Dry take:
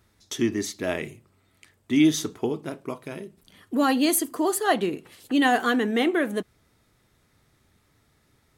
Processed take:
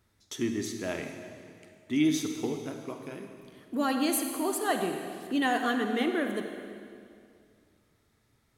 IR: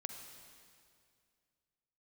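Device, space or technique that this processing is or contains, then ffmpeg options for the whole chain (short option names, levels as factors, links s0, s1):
stairwell: -filter_complex "[1:a]atrim=start_sample=2205[s0];[0:a][s0]afir=irnorm=-1:irlink=0,volume=0.668"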